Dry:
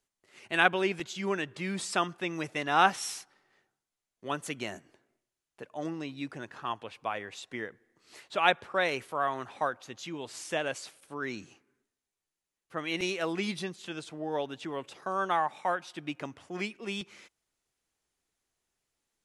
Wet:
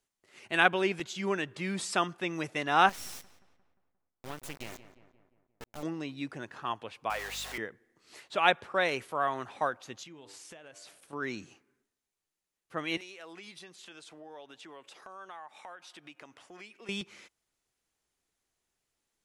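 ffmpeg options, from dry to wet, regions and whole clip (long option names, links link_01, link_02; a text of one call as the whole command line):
ffmpeg -i in.wav -filter_complex "[0:a]asettb=1/sr,asplit=3[link_01][link_02][link_03];[link_01]atrim=end=2.894[link_04];[link_02]atrim=start=2.89:end=5.83,asetpts=PTS-STARTPTS,afade=type=in:duration=0.004:curve=qsin,afade=type=out:start_time=2.936:duration=0.004:curve=qsin,acrusher=bits=4:dc=4:mix=0:aa=0.000001,acompressor=threshold=-38dB:ratio=2:attack=3.2:release=140:knee=1:detection=peak,asplit=2[link_05][link_06];[link_06]adelay=176,lowpass=frequency=2300:poles=1,volume=-12.5dB,asplit=2[link_07][link_08];[link_08]adelay=176,lowpass=frequency=2300:poles=1,volume=0.54,asplit=2[link_09][link_10];[link_10]adelay=176,lowpass=frequency=2300:poles=1,volume=0.54,asplit=2[link_11][link_12];[link_12]adelay=176,lowpass=frequency=2300:poles=1,volume=0.54,asplit=2[link_13][link_14];[link_14]adelay=176,lowpass=frequency=2300:poles=1,volume=0.54,asplit=2[link_15][link_16];[link_16]adelay=176,lowpass=frequency=2300:poles=1,volume=0.54[link_17];[link_05][link_07][link_09][link_11][link_13][link_15][link_17]amix=inputs=7:normalize=0,atrim=end_sample=129654[link_18];[link_03]atrim=start=5.826[link_19];[link_04][link_18]acrossfade=duration=0.004:curve1=hsin:curve2=qsin[link_20];[link_20][link_19]acrossfade=duration=0.004:curve1=qsin:curve2=hsin,asettb=1/sr,asplit=3[link_21][link_22][link_23];[link_21]atrim=end=7.104[link_24];[link_22]atrim=start=7.1:end=7.58,asetpts=PTS-STARTPTS,afade=type=in:duration=0.004:curve=qsin,afade=type=out:start_time=0.476:duration=0.004:curve=qsin,aeval=exprs='val(0)+0.5*0.0158*sgn(val(0))':channel_layout=same,highpass=580,aeval=exprs='val(0)+0.00251*(sin(2*PI*50*n/s)+sin(2*PI*2*50*n/s)/2+sin(2*PI*3*50*n/s)/3+sin(2*PI*4*50*n/s)/4+sin(2*PI*5*50*n/s)/5)':channel_layout=same[link_25];[link_23]atrim=start=7.576[link_26];[link_24][link_25]acrossfade=duration=0.004:curve1=hsin:curve2=qsin[link_27];[link_27][link_26]acrossfade=duration=0.004:curve1=qsin:curve2=hsin,asettb=1/sr,asplit=3[link_28][link_29][link_30];[link_28]atrim=end=10.034[link_31];[link_29]atrim=start=10.03:end=11.13,asetpts=PTS-STARTPTS,afade=type=in:duration=0.004:curve=qsin,afade=type=out:start_time=1.096:duration=0.004:curve=qsin,bandreject=frequency=98.33:width_type=h:width=4,bandreject=frequency=196.66:width_type=h:width=4,bandreject=frequency=294.99:width_type=h:width=4,bandreject=frequency=393.32:width_type=h:width=4,bandreject=frequency=491.65:width_type=h:width=4,bandreject=frequency=589.98:width_type=h:width=4,bandreject=frequency=688.31:width_type=h:width=4,bandreject=frequency=786.64:width_type=h:width=4,bandreject=frequency=884.97:width_type=h:width=4,bandreject=frequency=983.3:width_type=h:width=4,bandreject=frequency=1081.63:width_type=h:width=4,bandreject=frequency=1179.96:width_type=h:width=4,bandreject=frequency=1278.29:width_type=h:width=4,bandreject=frequency=1376.62:width_type=h:width=4,bandreject=frequency=1474.95:width_type=h:width=4,bandreject=frequency=1573.28:width_type=h:width=4,bandreject=frequency=1671.61:width_type=h:width=4,bandreject=frequency=1769.94:width_type=h:width=4,bandreject=frequency=1868.27:width_type=h:width=4,bandreject=frequency=1966.6:width_type=h:width=4,bandreject=frequency=2064.93:width_type=h:width=4,acompressor=threshold=-46dB:ratio=12:attack=3.2:release=140:knee=1:detection=peak[link_32];[link_30]atrim=start=11.126[link_33];[link_31][link_32]acrossfade=duration=0.004:curve1=hsin:curve2=qsin[link_34];[link_34][link_33]acrossfade=duration=0.004:curve1=qsin:curve2=hsin,asettb=1/sr,asplit=3[link_35][link_36][link_37];[link_35]atrim=end=12.974[link_38];[link_36]atrim=start=12.97:end=16.89,asetpts=PTS-STARTPTS,afade=type=in:duration=0.004:curve=qsin,afade=type=out:start_time=3.916:duration=0.004:curve=qsin,highpass=frequency=610:poles=1,acompressor=threshold=-48dB:ratio=3:attack=3.2:release=140:knee=1:detection=peak[link_39];[link_37]atrim=start=16.886[link_40];[link_38][link_39]acrossfade=duration=0.004:curve1=hsin:curve2=qsin[link_41];[link_41][link_40]acrossfade=duration=0.004:curve1=qsin:curve2=hsin" out.wav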